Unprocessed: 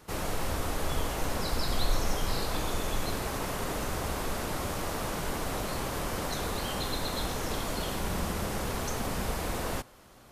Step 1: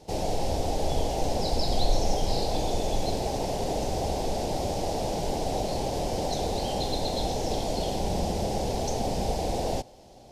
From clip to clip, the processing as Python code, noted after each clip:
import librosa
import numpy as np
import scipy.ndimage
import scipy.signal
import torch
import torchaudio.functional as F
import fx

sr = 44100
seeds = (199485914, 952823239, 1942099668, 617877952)

y = fx.curve_eq(x, sr, hz=(270.0, 800.0, 1200.0, 2400.0, 5200.0, 14000.0), db=(0, 6, -20, -7, 2, -14))
y = y * librosa.db_to_amplitude(3.5)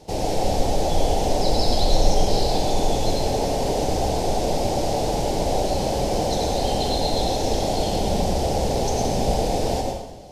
y = fx.rev_plate(x, sr, seeds[0], rt60_s=1.0, hf_ratio=0.8, predelay_ms=80, drr_db=1.5)
y = y * librosa.db_to_amplitude(4.0)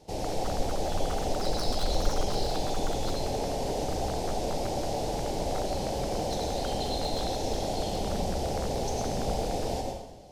y = np.minimum(x, 2.0 * 10.0 ** (-15.0 / 20.0) - x)
y = y * librosa.db_to_amplitude(-8.0)